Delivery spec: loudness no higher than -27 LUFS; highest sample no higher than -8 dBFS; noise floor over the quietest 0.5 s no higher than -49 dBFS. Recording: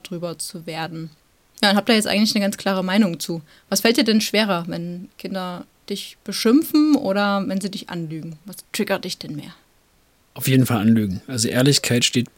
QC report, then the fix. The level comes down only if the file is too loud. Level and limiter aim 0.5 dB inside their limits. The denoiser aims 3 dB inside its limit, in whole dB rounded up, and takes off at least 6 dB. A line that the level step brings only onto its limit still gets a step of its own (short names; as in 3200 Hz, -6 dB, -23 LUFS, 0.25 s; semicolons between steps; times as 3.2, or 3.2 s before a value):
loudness -20.0 LUFS: fail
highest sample -5.0 dBFS: fail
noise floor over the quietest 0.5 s -59 dBFS: OK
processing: gain -7.5 dB